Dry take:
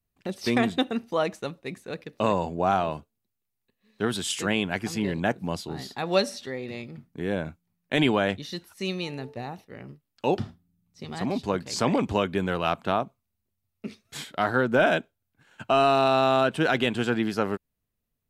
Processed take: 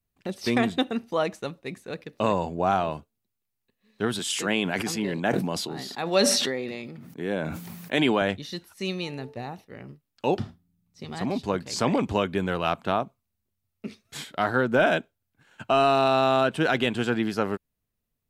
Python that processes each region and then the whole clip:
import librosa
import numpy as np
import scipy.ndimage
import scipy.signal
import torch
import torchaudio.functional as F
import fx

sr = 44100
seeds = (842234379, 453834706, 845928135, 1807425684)

y = fx.chain(x, sr, fx.highpass(hz=170.0, slope=12),
    fx.sustainer(db_per_s=31.0), at=(4.19, 8.22))